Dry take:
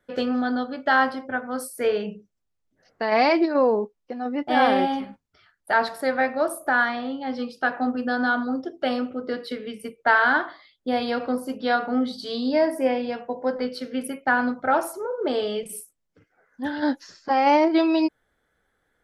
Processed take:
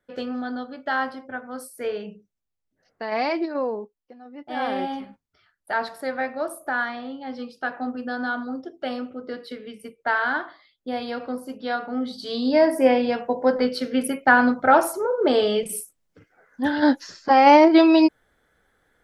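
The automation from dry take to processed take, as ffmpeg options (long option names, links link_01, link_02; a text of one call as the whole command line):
ffmpeg -i in.wav -af "volume=16.5dB,afade=type=out:start_time=3.51:duration=0.76:silence=0.281838,afade=type=in:start_time=4.27:duration=0.65:silence=0.251189,afade=type=in:start_time=11.95:duration=0.98:silence=0.316228" out.wav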